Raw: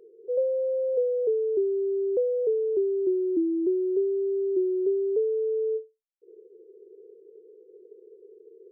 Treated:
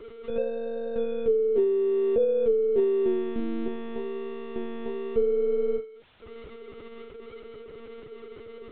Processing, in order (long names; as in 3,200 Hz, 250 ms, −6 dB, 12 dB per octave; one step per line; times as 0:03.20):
converter with a step at zero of −43 dBFS
mains-hum notches 60/120/180/240/300/360/420/480 Hz
one-pitch LPC vocoder at 8 kHz 230 Hz
level +2 dB